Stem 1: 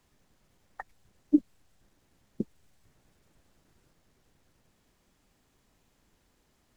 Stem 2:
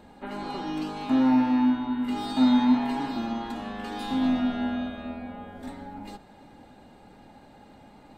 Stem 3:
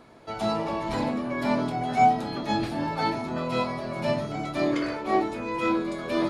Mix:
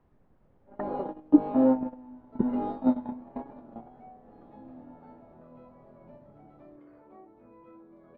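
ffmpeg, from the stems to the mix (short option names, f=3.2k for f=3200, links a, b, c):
-filter_complex "[0:a]acontrast=60,volume=-1.5dB,asplit=2[a][b];[1:a]equalizer=f=540:w=2.1:g=14.5,adelay=450,volume=-2dB[c];[2:a]acompressor=threshold=-36dB:ratio=4,adelay=2050,volume=-15dB[d];[b]apad=whole_len=380466[e];[c][e]sidechaingate=range=-25dB:threshold=-57dB:ratio=16:detection=peak[f];[a][f][d]amix=inputs=3:normalize=0,lowpass=1k"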